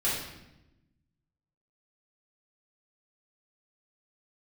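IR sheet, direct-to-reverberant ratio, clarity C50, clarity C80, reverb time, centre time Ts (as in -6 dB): -9.0 dB, 1.0 dB, 4.5 dB, 0.95 s, 60 ms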